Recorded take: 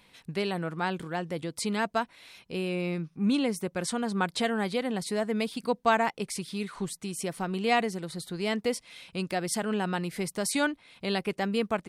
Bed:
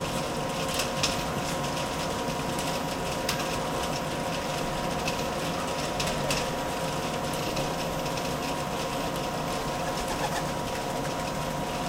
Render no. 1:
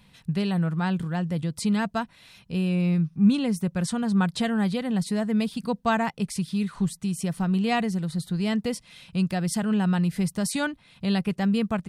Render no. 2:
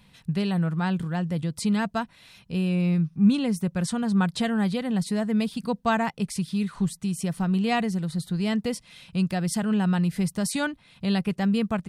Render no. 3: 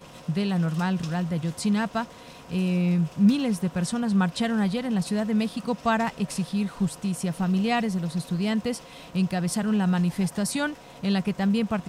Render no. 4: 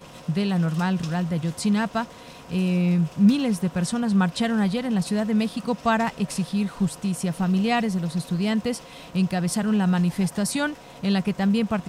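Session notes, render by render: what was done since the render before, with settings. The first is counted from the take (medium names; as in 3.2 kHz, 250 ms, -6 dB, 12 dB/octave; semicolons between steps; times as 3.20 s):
resonant low shelf 240 Hz +9.5 dB, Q 1.5; band-stop 2.2 kHz, Q 13
no audible change
add bed -16 dB
trim +2 dB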